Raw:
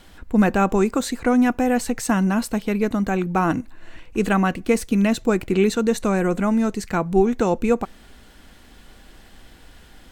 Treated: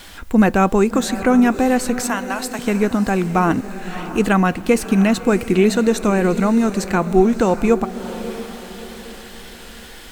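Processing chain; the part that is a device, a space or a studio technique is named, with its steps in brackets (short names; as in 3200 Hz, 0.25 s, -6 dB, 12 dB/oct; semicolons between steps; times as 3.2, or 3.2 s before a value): 2.06–2.59 Bessel high-pass 780 Hz, order 2; noise-reduction cassette on a plain deck (mismatched tape noise reduction encoder only; wow and flutter; white noise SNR 38 dB); diffused feedback echo 0.653 s, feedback 42%, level -12.5 dB; gain +3.5 dB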